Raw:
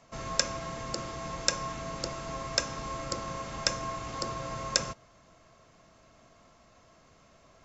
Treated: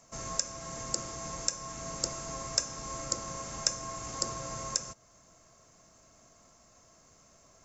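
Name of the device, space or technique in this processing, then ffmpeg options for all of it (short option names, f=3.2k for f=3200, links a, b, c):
over-bright horn tweeter: -af "highshelf=f=4.9k:t=q:w=1.5:g=10.5,alimiter=limit=-6dB:level=0:latency=1:release=386,volume=-3dB"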